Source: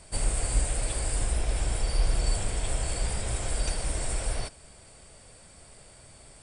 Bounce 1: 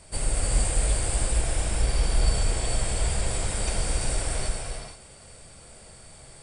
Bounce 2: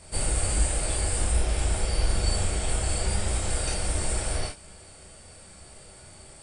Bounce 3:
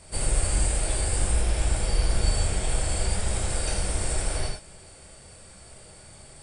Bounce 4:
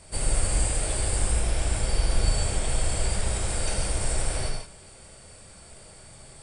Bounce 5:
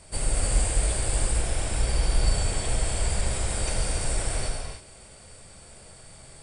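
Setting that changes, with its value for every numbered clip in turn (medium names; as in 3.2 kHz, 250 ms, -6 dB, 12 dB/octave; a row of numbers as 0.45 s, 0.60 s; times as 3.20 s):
gated-style reverb, gate: 500 ms, 80 ms, 130 ms, 200 ms, 340 ms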